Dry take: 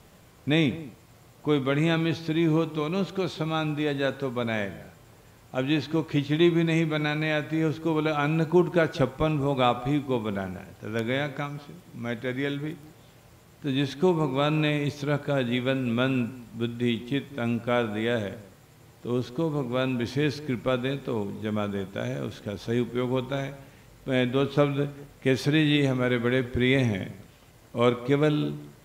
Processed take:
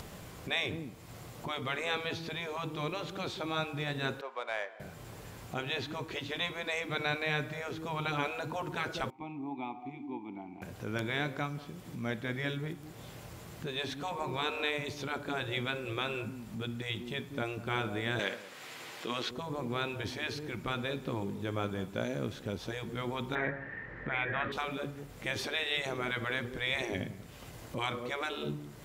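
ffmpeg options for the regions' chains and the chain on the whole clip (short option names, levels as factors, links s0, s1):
-filter_complex "[0:a]asettb=1/sr,asplit=3[s0][s1][s2];[s0]atrim=end=4.214[s3];[s1]atrim=start=4.21:end=4.8,asetpts=PTS-STARTPTS,afade=t=in:d=0.004:c=qsin,afade=t=out:st=0.586:d=0.004:c=qsin,highpass=f=600:w=0.5412,highpass=f=600:w=1.3066,highshelf=f=3400:g=-7.5,adynamicsmooth=sensitivity=5.5:basefreq=3600[s4];[s2]atrim=start=4.796[s5];[s3][s4]acrossfade=d=0.004:c1=hsin:c2=qsin[s6];[s6][s5]acrossfade=d=0.004:c1=qsin:c2=hsin,asettb=1/sr,asplit=3[s7][s8][s9];[s7]atrim=end=9.104[s10];[s8]atrim=start=9.1:end=10.62,asetpts=PTS-STARTPTS,afade=t=in:d=0.004:c=qsin,afade=t=out:st=1.516:d=0.004:c=qsin,asplit=3[s11][s12][s13];[s11]bandpass=f=300:t=q:w=8,volume=1[s14];[s12]bandpass=f=870:t=q:w=8,volume=0.501[s15];[s13]bandpass=f=2240:t=q:w=8,volume=0.355[s16];[s14][s15][s16]amix=inputs=3:normalize=0,equalizer=f=700:w=4.8:g=12,bandreject=f=450:w=10[s17];[s9]atrim=start=10.616[s18];[s10][s17]acrossfade=d=0.004:c1=hsin:c2=qsin[s19];[s19][s18]acrossfade=d=0.004:c1=qsin:c2=hsin,asettb=1/sr,asplit=3[s20][s21][s22];[s20]atrim=end=18.194[s23];[s21]atrim=start=18.19:end=19.31,asetpts=PTS-STARTPTS,afade=t=in:d=0.004:c=qsin,afade=t=out:st=1.116:d=0.004:c=qsin,highpass=290,equalizer=f=2600:w=0.43:g=12.5[s24];[s22]atrim=start=19.306[s25];[s23][s24]acrossfade=d=0.004:c1=hsin:c2=qsin[s26];[s26][s25]acrossfade=d=0.004:c1=qsin:c2=hsin,asettb=1/sr,asplit=3[s27][s28][s29];[s27]atrim=end=23.354[s30];[s28]atrim=start=23.35:end=24.52,asetpts=PTS-STARTPTS,afade=t=in:d=0.004:c=qsin,afade=t=out:st=1.166:d=0.004:c=qsin,lowpass=f=1800:t=q:w=16,equalizer=f=380:t=o:w=1.9:g=6[s31];[s29]atrim=start=24.516[s32];[s30][s31]acrossfade=d=0.004:c1=hsin:c2=qsin[s33];[s33][s32]acrossfade=d=0.004:c1=qsin:c2=hsin,afftfilt=real='re*lt(hypot(re,im),0.251)':imag='im*lt(hypot(re,im),0.251)':win_size=1024:overlap=0.75,acompressor=mode=upward:threshold=0.02:ratio=2.5,volume=0.708"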